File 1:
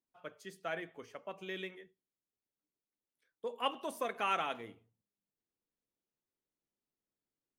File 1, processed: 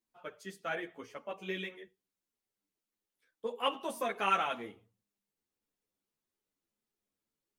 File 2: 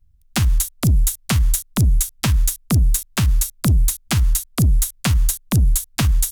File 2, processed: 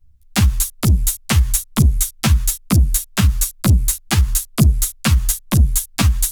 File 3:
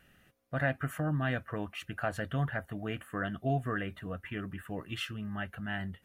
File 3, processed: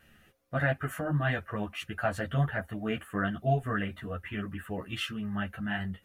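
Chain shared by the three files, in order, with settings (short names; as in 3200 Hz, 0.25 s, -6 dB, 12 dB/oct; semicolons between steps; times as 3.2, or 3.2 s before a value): ensemble effect; gain +6 dB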